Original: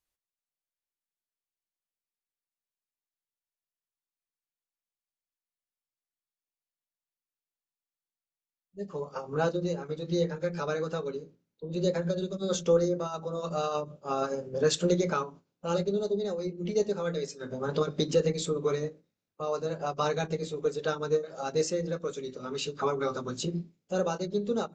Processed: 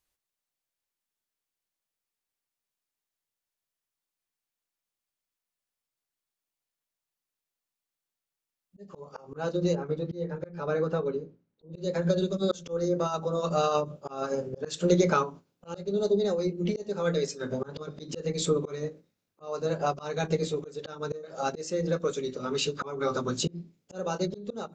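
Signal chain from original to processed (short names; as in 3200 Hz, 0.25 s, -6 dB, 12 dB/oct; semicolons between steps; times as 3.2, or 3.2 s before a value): 9.75–11.78 LPF 1300 Hz 6 dB/oct; auto swell 0.331 s; gain +5 dB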